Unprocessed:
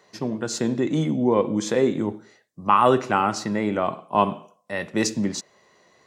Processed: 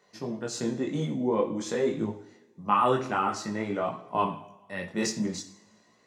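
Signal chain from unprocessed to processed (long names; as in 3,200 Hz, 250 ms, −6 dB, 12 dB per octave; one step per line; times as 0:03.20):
coupled-rooms reverb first 0.53 s, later 1.9 s, from −18 dB, DRR 7 dB
multi-voice chorus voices 2, 0.49 Hz, delay 20 ms, depth 3.5 ms
level −4 dB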